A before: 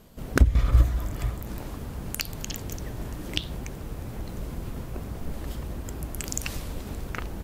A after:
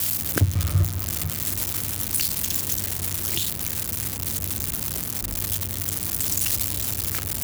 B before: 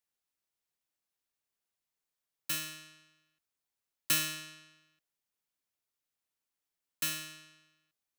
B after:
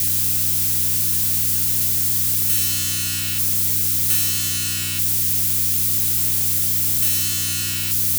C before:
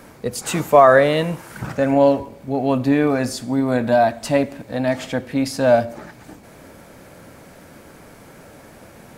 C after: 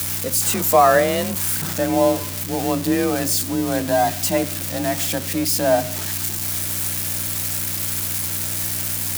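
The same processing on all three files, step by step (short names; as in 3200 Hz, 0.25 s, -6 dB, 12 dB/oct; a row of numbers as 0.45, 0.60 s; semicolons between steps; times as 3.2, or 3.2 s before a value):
switching spikes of -11.5 dBFS; hum 60 Hz, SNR 13 dB; frequency shift +35 Hz; gain -3 dB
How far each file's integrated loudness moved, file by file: +7.0, +17.0, -1.5 LU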